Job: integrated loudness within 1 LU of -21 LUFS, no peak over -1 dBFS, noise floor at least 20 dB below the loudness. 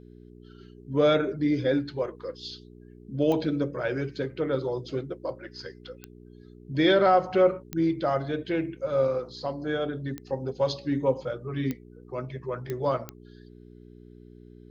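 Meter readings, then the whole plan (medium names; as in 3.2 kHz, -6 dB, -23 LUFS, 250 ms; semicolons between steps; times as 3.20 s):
clicks found 7; hum 60 Hz; highest harmonic 420 Hz; hum level -47 dBFS; loudness -27.5 LUFS; peak level -8.5 dBFS; loudness target -21.0 LUFS
-> de-click; de-hum 60 Hz, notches 7; trim +6.5 dB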